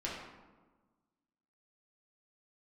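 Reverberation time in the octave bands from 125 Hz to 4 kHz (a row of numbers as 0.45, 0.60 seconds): 1.6, 1.7, 1.3, 1.3, 0.95, 0.65 seconds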